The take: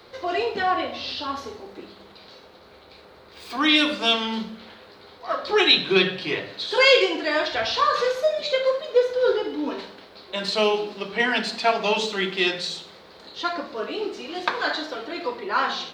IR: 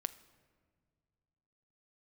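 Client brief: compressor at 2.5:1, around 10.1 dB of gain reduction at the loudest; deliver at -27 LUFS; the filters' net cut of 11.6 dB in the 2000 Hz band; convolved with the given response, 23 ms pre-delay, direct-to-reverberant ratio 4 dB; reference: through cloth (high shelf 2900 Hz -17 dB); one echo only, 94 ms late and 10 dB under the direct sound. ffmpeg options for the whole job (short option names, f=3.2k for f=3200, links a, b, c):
-filter_complex "[0:a]equalizer=f=2k:t=o:g=-8,acompressor=threshold=-29dB:ratio=2.5,aecho=1:1:94:0.316,asplit=2[a][b];[1:a]atrim=start_sample=2205,adelay=23[c];[b][c]afir=irnorm=-1:irlink=0,volume=-3dB[d];[a][d]amix=inputs=2:normalize=0,highshelf=f=2.9k:g=-17,volume=4.5dB"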